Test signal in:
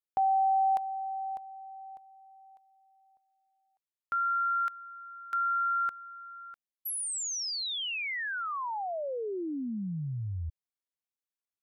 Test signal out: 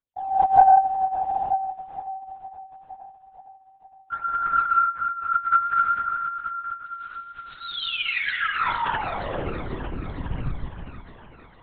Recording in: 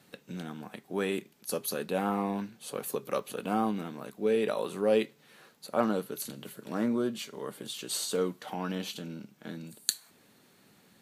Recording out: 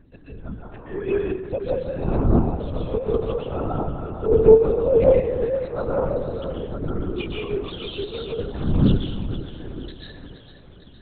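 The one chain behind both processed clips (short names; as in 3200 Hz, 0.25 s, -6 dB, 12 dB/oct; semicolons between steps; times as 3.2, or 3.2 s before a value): spectral contrast raised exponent 1.8; phaser 0.46 Hz, delay 3.2 ms, feedback 74%; on a send: thinning echo 0.463 s, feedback 63%, high-pass 180 Hz, level -10 dB; on the sum: plate-style reverb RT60 1.2 s, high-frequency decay 0.45×, pre-delay 0.115 s, DRR -4.5 dB; LPC vocoder at 8 kHz whisper; Doppler distortion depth 0.21 ms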